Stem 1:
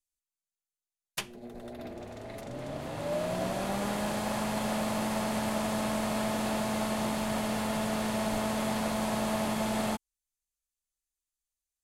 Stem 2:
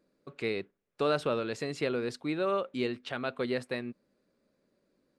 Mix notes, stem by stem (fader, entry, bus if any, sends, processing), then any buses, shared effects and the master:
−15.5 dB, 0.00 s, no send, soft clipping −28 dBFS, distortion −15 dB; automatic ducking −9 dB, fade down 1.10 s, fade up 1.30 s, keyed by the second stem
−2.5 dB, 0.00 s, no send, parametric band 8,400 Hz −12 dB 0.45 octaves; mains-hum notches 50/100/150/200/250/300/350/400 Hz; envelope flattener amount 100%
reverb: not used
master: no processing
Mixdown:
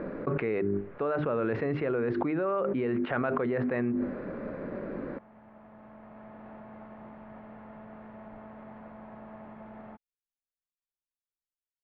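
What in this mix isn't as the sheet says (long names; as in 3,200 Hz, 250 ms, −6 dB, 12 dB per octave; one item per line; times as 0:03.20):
stem 1: missing soft clipping −28 dBFS, distortion −15 dB
master: extra low-pass filter 1,900 Hz 24 dB per octave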